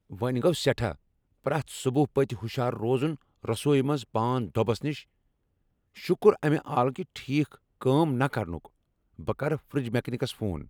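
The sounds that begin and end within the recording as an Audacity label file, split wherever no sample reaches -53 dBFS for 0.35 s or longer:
1.440000	5.040000	sound
5.950000	8.670000	sound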